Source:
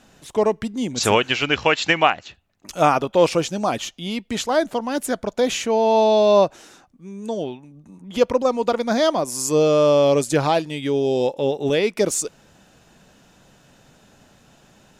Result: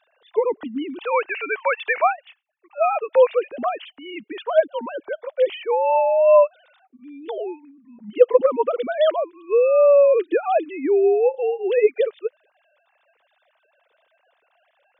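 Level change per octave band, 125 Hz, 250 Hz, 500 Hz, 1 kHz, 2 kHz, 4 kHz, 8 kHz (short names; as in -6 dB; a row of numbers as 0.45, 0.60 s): under -25 dB, -8.5 dB, +1.5 dB, -1.5 dB, -3.5 dB, -13.5 dB, under -40 dB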